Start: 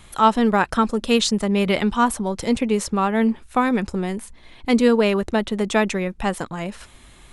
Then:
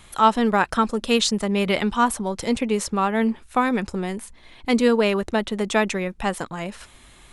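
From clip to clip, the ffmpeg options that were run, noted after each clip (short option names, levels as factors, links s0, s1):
-af "lowshelf=f=410:g=-3.5"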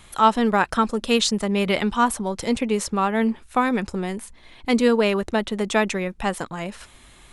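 -af anull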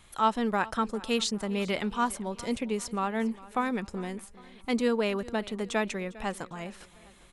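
-af "aecho=1:1:403|806|1209|1612:0.1|0.048|0.023|0.0111,volume=0.376"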